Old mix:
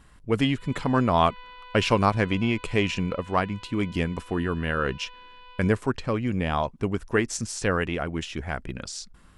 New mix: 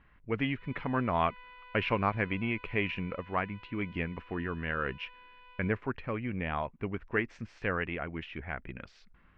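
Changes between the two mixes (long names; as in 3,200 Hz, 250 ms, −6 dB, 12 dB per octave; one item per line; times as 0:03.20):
background: remove low-pass filter 3,800 Hz 24 dB per octave
master: add transistor ladder low-pass 2,700 Hz, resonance 45%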